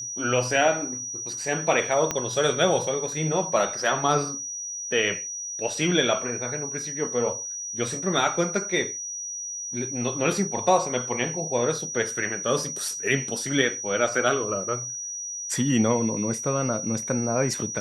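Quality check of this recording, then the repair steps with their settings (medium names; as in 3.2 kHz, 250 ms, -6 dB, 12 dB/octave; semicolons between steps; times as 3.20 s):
whine 5.8 kHz -31 dBFS
2.11 s: pop -10 dBFS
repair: de-click; band-stop 5.8 kHz, Q 30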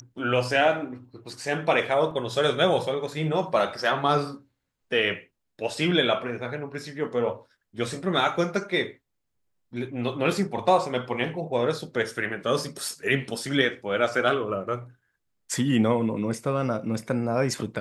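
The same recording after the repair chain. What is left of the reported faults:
2.11 s: pop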